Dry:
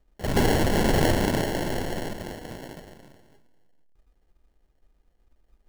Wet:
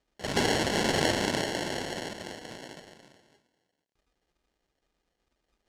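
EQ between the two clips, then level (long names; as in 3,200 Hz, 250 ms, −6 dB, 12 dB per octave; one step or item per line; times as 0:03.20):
high-pass filter 200 Hz 6 dB per octave
low-pass filter 6,600 Hz 12 dB per octave
high-shelf EQ 2,300 Hz +9.5 dB
−4.0 dB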